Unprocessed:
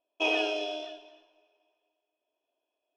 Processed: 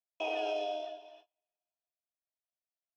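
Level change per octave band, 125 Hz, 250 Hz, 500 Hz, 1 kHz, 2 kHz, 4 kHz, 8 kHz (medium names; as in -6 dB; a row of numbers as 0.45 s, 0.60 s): no reading, -10.0 dB, -2.5 dB, -1.0 dB, -11.5 dB, -10.5 dB, under -10 dB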